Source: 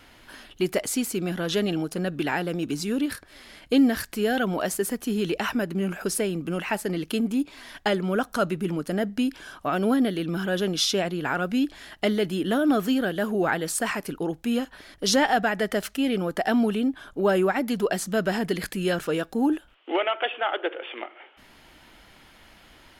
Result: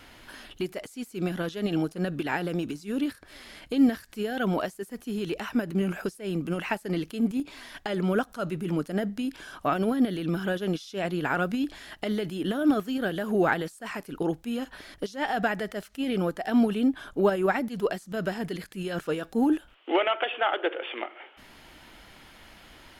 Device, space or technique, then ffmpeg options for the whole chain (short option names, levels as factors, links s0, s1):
de-esser from a sidechain: -filter_complex "[0:a]asplit=2[s0][s1];[s1]highpass=f=5500:w=0.5412,highpass=f=5500:w=1.3066,apad=whole_len=1013969[s2];[s0][s2]sidechaincompress=threshold=0.00251:ratio=5:attack=1.1:release=63,volume=1.19"